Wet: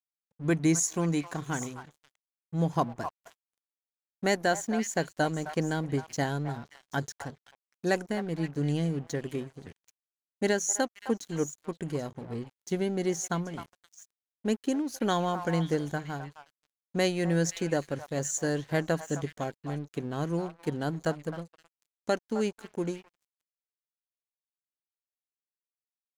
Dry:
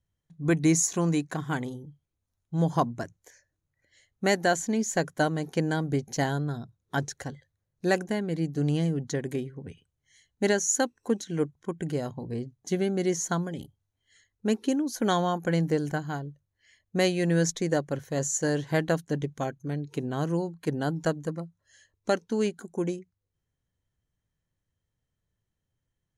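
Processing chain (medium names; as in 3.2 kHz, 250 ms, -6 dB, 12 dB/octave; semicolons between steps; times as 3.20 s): on a send: repeats whose band climbs or falls 261 ms, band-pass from 990 Hz, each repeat 1.4 oct, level -6 dB; on the sum: crossover distortion -46.5 dBFS; trim -2 dB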